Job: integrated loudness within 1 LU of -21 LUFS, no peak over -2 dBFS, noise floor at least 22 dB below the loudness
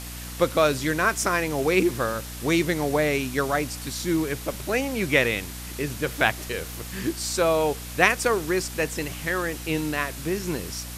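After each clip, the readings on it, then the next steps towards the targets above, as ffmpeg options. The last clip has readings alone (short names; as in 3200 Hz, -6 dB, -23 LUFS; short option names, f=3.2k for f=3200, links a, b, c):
hum 60 Hz; harmonics up to 300 Hz; hum level -36 dBFS; noise floor -37 dBFS; noise floor target -47 dBFS; loudness -25.0 LUFS; peak -3.5 dBFS; loudness target -21.0 LUFS
-> -af "bandreject=f=60:t=h:w=6,bandreject=f=120:t=h:w=6,bandreject=f=180:t=h:w=6,bandreject=f=240:t=h:w=6,bandreject=f=300:t=h:w=6"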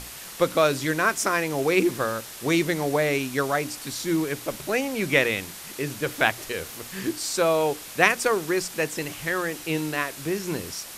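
hum none; noise floor -40 dBFS; noise floor target -47 dBFS
-> -af "afftdn=nr=7:nf=-40"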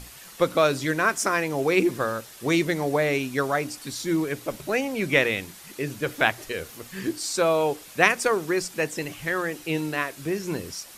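noise floor -46 dBFS; noise floor target -47 dBFS
-> -af "afftdn=nr=6:nf=-46"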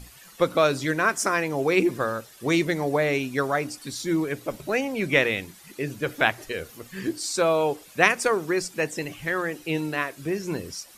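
noise floor -50 dBFS; loudness -25.0 LUFS; peak -3.0 dBFS; loudness target -21.0 LUFS
-> -af "volume=4dB,alimiter=limit=-2dB:level=0:latency=1"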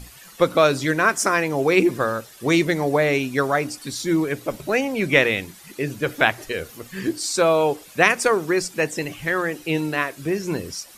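loudness -21.5 LUFS; peak -2.0 dBFS; noise floor -46 dBFS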